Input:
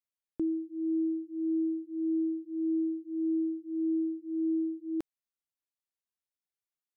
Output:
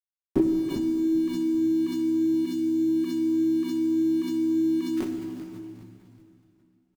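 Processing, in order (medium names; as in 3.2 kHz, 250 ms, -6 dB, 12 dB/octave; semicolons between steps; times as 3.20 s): every event in the spectrogram widened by 60 ms; peaking EQ 480 Hz -7.5 dB 0.82 oct; comb 5.4 ms, depth 54%; in parallel at -3 dB: peak limiter -30.5 dBFS, peak gain reduction 6.5 dB; on the sum: transient shaper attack +11 dB, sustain +7 dB; small samples zeroed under -40.5 dBFS; 2.34–2.89 s: static phaser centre 360 Hz, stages 4; on a send: frequency-shifting echo 392 ms, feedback 36%, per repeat -70 Hz, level -14 dB; on the sum: plate-style reverb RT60 2.7 s, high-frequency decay 0.95×, DRR 2.5 dB; swell ahead of each attack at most 34 dB/s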